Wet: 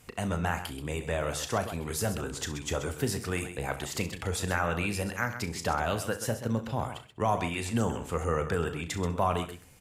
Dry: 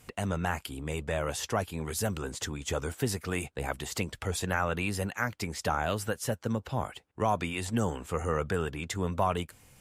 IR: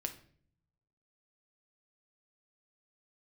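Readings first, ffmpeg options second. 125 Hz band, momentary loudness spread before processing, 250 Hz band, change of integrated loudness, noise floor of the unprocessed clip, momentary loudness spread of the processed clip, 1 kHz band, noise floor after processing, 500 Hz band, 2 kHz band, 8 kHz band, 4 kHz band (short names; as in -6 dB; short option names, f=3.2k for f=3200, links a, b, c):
+1.0 dB, 6 LU, +1.0 dB, +1.0 dB, -60 dBFS, 5 LU, +1.0 dB, -51 dBFS, +1.0 dB, +1.0 dB, +1.0 dB, +1.0 dB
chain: -filter_complex "[0:a]aecho=1:1:34.99|131.2:0.282|0.282,asplit=2[a][b];[1:a]atrim=start_sample=2205,adelay=65[c];[b][c]afir=irnorm=-1:irlink=0,volume=-15dB[d];[a][d]amix=inputs=2:normalize=0"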